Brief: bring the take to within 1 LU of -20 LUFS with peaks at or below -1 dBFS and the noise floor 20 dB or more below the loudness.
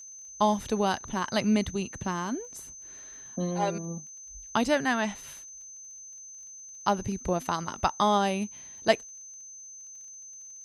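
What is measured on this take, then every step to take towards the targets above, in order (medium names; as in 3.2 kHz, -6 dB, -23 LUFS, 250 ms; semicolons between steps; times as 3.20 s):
tick rate 27 per s; steady tone 6.2 kHz; tone level -43 dBFS; loudness -29.0 LUFS; peak level -9.0 dBFS; loudness target -20.0 LUFS
-> de-click; band-stop 6.2 kHz, Q 30; trim +9 dB; peak limiter -1 dBFS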